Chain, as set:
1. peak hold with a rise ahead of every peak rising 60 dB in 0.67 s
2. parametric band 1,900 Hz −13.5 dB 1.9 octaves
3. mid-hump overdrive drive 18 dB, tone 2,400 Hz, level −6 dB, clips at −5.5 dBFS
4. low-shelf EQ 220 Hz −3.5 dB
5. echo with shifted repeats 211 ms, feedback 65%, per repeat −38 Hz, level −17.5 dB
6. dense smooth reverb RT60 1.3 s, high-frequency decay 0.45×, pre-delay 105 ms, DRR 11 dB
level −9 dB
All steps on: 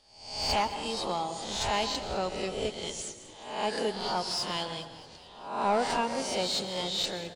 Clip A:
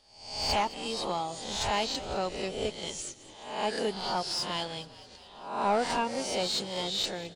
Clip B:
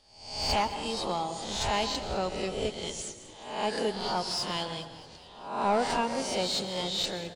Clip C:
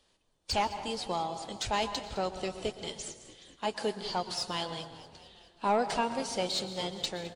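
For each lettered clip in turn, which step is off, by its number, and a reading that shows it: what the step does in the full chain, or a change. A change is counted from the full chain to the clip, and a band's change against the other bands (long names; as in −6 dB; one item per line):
6, echo-to-direct ratio −9.5 dB to −15.0 dB
4, 125 Hz band +2.0 dB
1, 4 kHz band −2.0 dB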